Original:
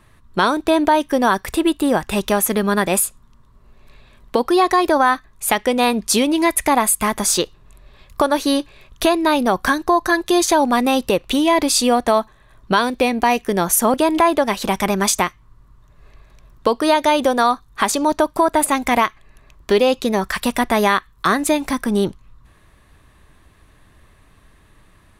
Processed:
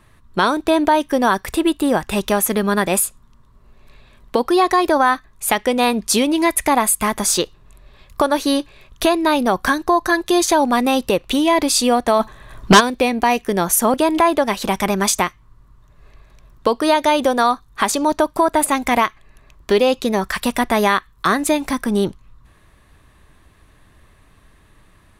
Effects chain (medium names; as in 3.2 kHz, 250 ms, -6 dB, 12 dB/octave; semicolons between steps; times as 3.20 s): 12.19–12.79 s: sine folder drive 5 dB -> 9 dB, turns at -3.5 dBFS